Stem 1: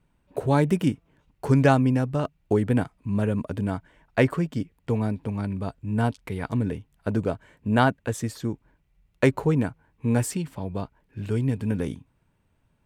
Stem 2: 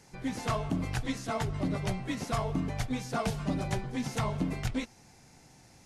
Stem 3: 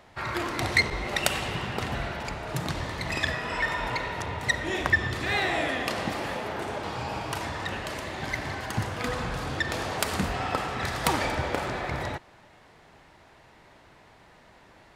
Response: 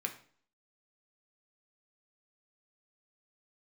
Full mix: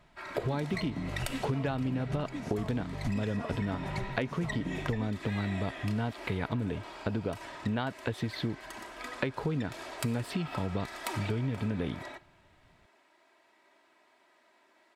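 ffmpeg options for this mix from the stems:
-filter_complex "[0:a]highshelf=frequency=5100:width_type=q:width=3:gain=-10.5,acompressor=threshold=-24dB:ratio=3,volume=2.5dB[link_01];[1:a]tiltshelf=frequency=970:gain=4.5,adelay=250,volume=-6dB[link_02];[2:a]highpass=310,aecho=1:1:3.1:0.57,volume=-13.5dB,asplit=2[link_03][link_04];[link_04]volume=-7.5dB[link_05];[3:a]atrim=start_sample=2205[link_06];[link_05][link_06]afir=irnorm=-1:irlink=0[link_07];[link_01][link_02][link_03][link_07]amix=inputs=4:normalize=0,acompressor=threshold=-29dB:ratio=5"

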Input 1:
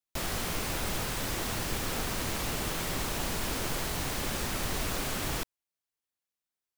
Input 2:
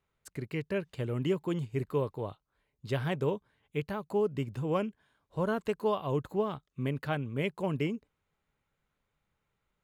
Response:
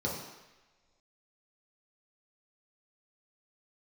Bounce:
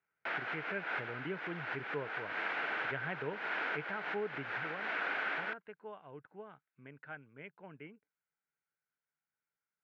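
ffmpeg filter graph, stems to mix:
-filter_complex "[0:a]highpass=400,adelay=100,volume=0.5dB[link_01];[1:a]volume=-4.5dB,afade=type=out:start_time=4.39:duration=0.42:silence=0.316228,asplit=2[link_02][link_03];[link_03]apad=whole_len=303201[link_04];[link_01][link_04]sidechaincompress=threshold=-43dB:ratio=6:attack=9.5:release=163[link_05];[link_05][link_02]amix=inputs=2:normalize=0,highpass=230,equalizer=frequency=240:width_type=q:width=4:gain=-7,equalizer=frequency=370:width_type=q:width=4:gain=-6,equalizer=frequency=550:width_type=q:width=4:gain=-6,equalizer=frequency=1100:width_type=q:width=4:gain=-6,equalizer=frequency=1500:width_type=q:width=4:gain=10,equalizer=frequency=2200:width_type=q:width=4:gain=3,lowpass=frequency=2500:width=0.5412,lowpass=frequency=2500:width=1.3066"

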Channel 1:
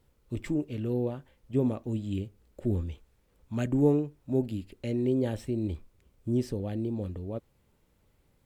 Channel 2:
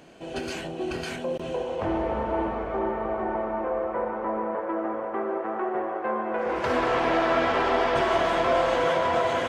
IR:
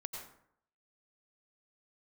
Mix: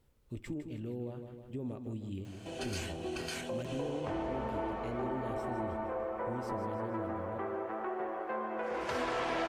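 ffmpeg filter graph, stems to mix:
-filter_complex "[0:a]alimiter=limit=-22dB:level=0:latency=1,volume=-3.5dB,asplit=2[link_01][link_02];[link_02]volume=-9dB[link_03];[1:a]highshelf=frequency=4000:gain=10.5,adelay=2250,volume=-2.5dB[link_04];[link_03]aecho=0:1:156|312|468|624|780|936|1092:1|0.48|0.23|0.111|0.0531|0.0255|0.0122[link_05];[link_01][link_04][link_05]amix=inputs=3:normalize=0,acompressor=threshold=-46dB:ratio=1.5"

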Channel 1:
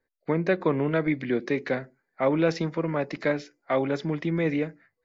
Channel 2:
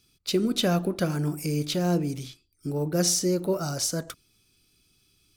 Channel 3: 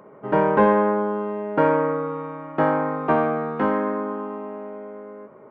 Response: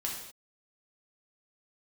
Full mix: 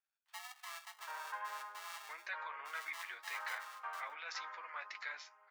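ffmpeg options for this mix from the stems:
-filter_complex "[0:a]adelay=1800,volume=-3dB[link_01];[1:a]lowpass=frequency=1500:width=0.5412,lowpass=frequency=1500:width=1.3066,aeval=exprs='val(0)*sgn(sin(2*PI*500*n/s))':channel_layout=same,volume=-15.5dB[link_02];[2:a]adelay=750,volume=-13.5dB[link_03];[link_01][link_03]amix=inputs=2:normalize=0,alimiter=limit=-21dB:level=0:latency=1:release=30,volume=0dB[link_04];[link_02][link_04]amix=inputs=2:normalize=0,highpass=frequency=1100:width=0.5412,highpass=frequency=1100:width=1.3066,flanger=delay=8.5:depth=2.7:regen=-39:speed=1.8:shape=triangular"

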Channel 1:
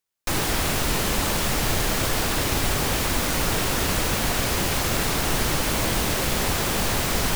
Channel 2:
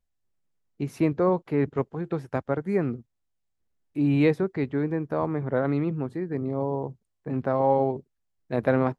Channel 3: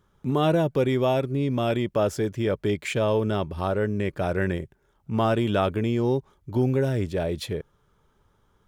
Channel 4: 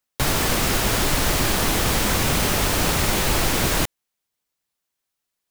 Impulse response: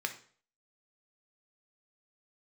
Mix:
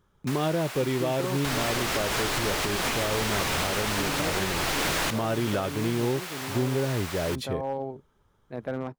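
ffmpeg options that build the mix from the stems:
-filter_complex "[0:a]highpass=800,highshelf=frequency=4400:gain=-6.5,volume=-7dB[link_01];[1:a]volume=13dB,asoftclip=hard,volume=-13dB,volume=-9.5dB[link_02];[2:a]volume=-2dB[link_03];[3:a]asplit=2[link_04][link_05];[link_05]highpass=frequency=720:poles=1,volume=11dB,asoftclip=type=tanh:threshold=-7dB[link_06];[link_04][link_06]amix=inputs=2:normalize=0,lowpass=frequency=4300:poles=1,volume=-6dB,adelay=1250,volume=-4.5dB[link_07];[link_01][link_02][link_03][link_07]amix=inputs=4:normalize=0,alimiter=limit=-17dB:level=0:latency=1:release=320"

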